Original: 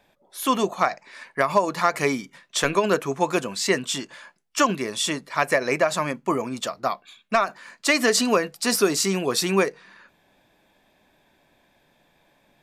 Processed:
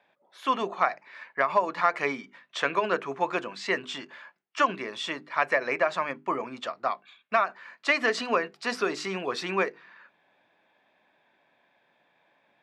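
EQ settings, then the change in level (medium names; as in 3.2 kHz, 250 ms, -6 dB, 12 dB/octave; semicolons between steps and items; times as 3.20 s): band-pass 130–2500 Hz; bass shelf 500 Hz -11.5 dB; hum notches 50/100/150/200/250/300/350/400 Hz; 0.0 dB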